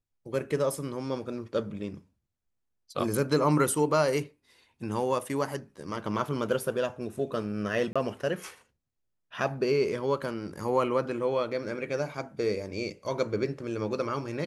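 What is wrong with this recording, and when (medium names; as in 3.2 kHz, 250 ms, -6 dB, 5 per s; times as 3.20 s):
7.93–7.96 s: dropout 26 ms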